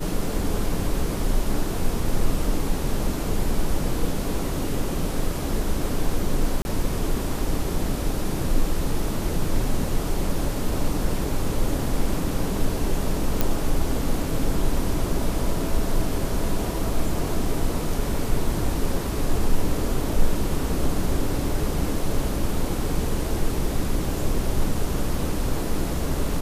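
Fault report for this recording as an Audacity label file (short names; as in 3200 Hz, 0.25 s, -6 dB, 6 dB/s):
6.620000	6.650000	gap 30 ms
13.410000	13.410000	pop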